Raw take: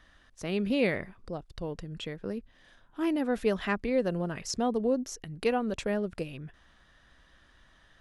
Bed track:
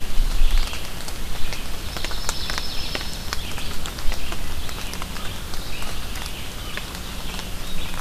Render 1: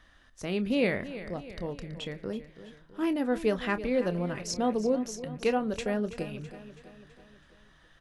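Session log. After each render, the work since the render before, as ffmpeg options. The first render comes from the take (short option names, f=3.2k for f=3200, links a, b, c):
-filter_complex "[0:a]asplit=2[a][b];[b]adelay=28,volume=-13dB[c];[a][c]amix=inputs=2:normalize=0,aecho=1:1:328|656|984|1312|1640:0.2|0.108|0.0582|0.0314|0.017"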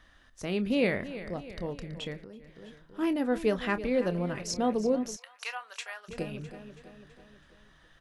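-filter_complex "[0:a]asettb=1/sr,asplit=3[a][b][c];[a]atrim=end=2.224[d];[b]atrim=start=2.22:end=2.62,asetpts=PTS-STARTPTS,afade=t=in:d=0.004:c=qsin,afade=t=out:st=0.396:d=0.004:c=qsin,acompressor=threshold=-44dB:ratio=5:attack=3.2:release=140:knee=1:detection=peak[e];[c]atrim=start=2.616[f];[d][e]acrossfade=d=0.004:c1=hsin:c2=qsin[g];[g][f]acrossfade=d=0.004:c1=qsin:c2=hsin,asplit=3[h][i][j];[h]afade=t=out:st=5.15:d=0.02[k];[i]highpass=f=990:w=0.5412,highpass=f=990:w=1.3066,afade=t=in:st=5.15:d=0.02,afade=t=out:st=6.08:d=0.02[l];[j]afade=t=in:st=6.08:d=0.02[m];[k][l][m]amix=inputs=3:normalize=0"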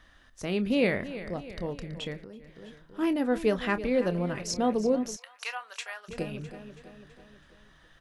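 -af "volume=1.5dB"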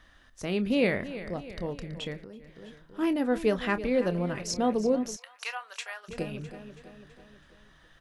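-filter_complex "[0:a]asettb=1/sr,asplit=3[a][b][c];[a]atrim=end=5.364[d];[b]atrim=start=5.36:end=6.04,asetpts=PTS-STARTPTS,afade=t=in:d=0.004:c=qsin,afade=t=out:st=0.676:d=0.004:c=qsin,highpass=250[e];[c]atrim=start=6.036[f];[d][e]acrossfade=d=0.004:c1=hsin:c2=qsin[g];[g][f]acrossfade=d=0.004:c1=qsin:c2=hsin"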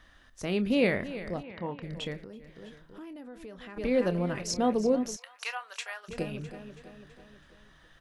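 -filter_complex "[0:a]asplit=3[a][b][c];[a]afade=t=out:st=1.42:d=0.02[d];[b]highpass=140,equalizer=f=410:t=q:w=4:g=-5,equalizer=f=610:t=q:w=4:g=-4,equalizer=f=920:t=q:w=4:g=8,lowpass=f=3.2k:w=0.5412,lowpass=f=3.2k:w=1.3066,afade=t=in:st=1.42:d=0.02,afade=t=out:st=1.82:d=0.02[e];[c]afade=t=in:st=1.82:d=0.02[f];[d][e][f]amix=inputs=3:normalize=0,asplit=3[g][h][i];[g]afade=t=out:st=2.68:d=0.02[j];[h]acompressor=threshold=-43dB:ratio=6:attack=3.2:release=140:knee=1:detection=peak,afade=t=in:st=2.68:d=0.02,afade=t=out:st=3.76:d=0.02[k];[i]afade=t=in:st=3.76:d=0.02[l];[j][k][l]amix=inputs=3:normalize=0"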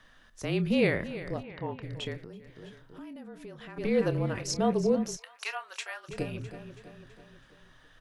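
-af "afreqshift=-32"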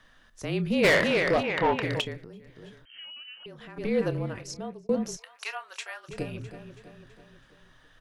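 -filter_complex "[0:a]asplit=3[a][b][c];[a]afade=t=out:st=0.83:d=0.02[d];[b]asplit=2[e][f];[f]highpass=f=720:p=1,volume=27dB,asoftclip=type=tanh:threshold=-12dB[g];[e][g]amix=inputs=2:normalize=0,lowpass=f=4.9k:p=1,volume=-6dB,afade=t=in:st=0.83:d=0.02,afade=t=out:st=2:d=0.02[h];[c]afade=t=in:st=2:d=0.02[i];[d][h][i]amix=inputs=3:normalize=0,asettb=1/sr,asplit=3[j][k][l];[j]atrim=end=2.854[m];[k]atrim=start=2.85:end=3.46,asetpts=PTS-STARTPTS,afade=t=in:d=0.004:c=qsin,afade=t=out:st=0.606:d=0.004:c=qsin,lowpass=f=2.7k:t=q:w=0.5098,lowpass=f=2.7k:t=q:w=0.6013,lowpass=f=2.7k:t=q:w=0.9,lowpass=f=2.7k:t=q:w=2.563,afreqshift=-3200[n];[l]atrim=start=3.456[o];[m][n]acrossfade=d=0.004:c1=hsin:c2=qsin[p];[p][o]acrossfade=d=0.004:c1=qsin:c2=hsin,asplit=2[q][r];[q]atrim=end=4.89,asetpts=PTS-STARTPTS,afade=t=out:st=4.07:d=0.82[s];[r]atrim=start=4.89,asetpts=PTS-STARTPTS,afade=t=in:d=0.004:c=hsin[t];[s][t]concat=n=2:v=0:a=1"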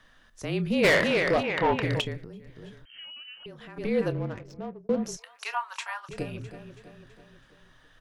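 -filter_complex "[0:a]asettb=1/sr,asplit=3[a][b][c];[a]atrim=end=1.704[d];[b]atrim=start=1.7:end=3.51,asetpts=PTS-STARTPTS,afade=t=in:d=0.004:c=qsin,afade=t=out:st=1.806:d=0.004:c=qsin,lowshelf=f=160:g=7[e];[c]atrim=start=3.506[f];[d][e]acrossfade=d=0.004:c1=hsin:c2=qsin[g];[g][f]acrossfade=d=0.004:c1=qsin:c2=hsin,asettb=1/sr,asplit=3[h][i][j];[h]atrim=end=4.124[k];[i]atrim=start=4.12:end=5.04,asetpts=PTS-STARTPTS,afade=t=in:d=0.004:c=qsin,afade=t=out:st=0.916:d=0.004:c=qsin,adynamicsmooth=sensitivity=7:basefreq=950[l];[j]atrim=start=5.036[m];[k][l]acrossfade=d=0.004:c1=hsin:c2=qsin[n];[n][m]acrossfade=d=0.004:c1=qsin:c2=hsin,asettb=1/sr,asplit=3[o][p][q];[o]atrim=end=5.544[r];[p]atrim=start=5.54:end=6.09,asetpts=PTS-STARTPTS,afade=t=in:d=0.004:c=qsin,afade=t=out:st=0.546:d=0.004:c=qsin,highpass=f=950:t=q:w=5.3[s];[q]atrim=start=6.086[t];[r][s]acrossfade=d=0.004:c1=hsin:c2=qsin[u];[u][t]acrossfade=d=0.004:c1=qsin:c2=hsin"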